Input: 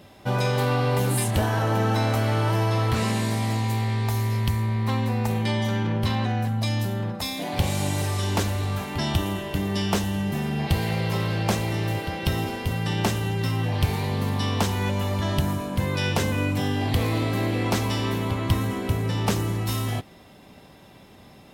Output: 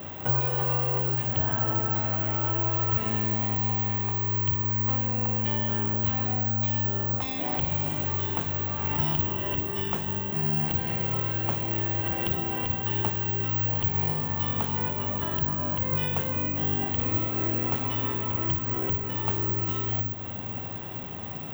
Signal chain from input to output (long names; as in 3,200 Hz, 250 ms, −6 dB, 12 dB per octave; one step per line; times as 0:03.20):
downward compressor, threshold −38 dBFS, peak gain reduction 20.5 dB
convolution reverb RT60 3.5 s, pre-delay 29 ms, DRR 8.5 dB
bad sample-rate conversion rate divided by 2×, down filtered, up zero stuff
level +2.5 dB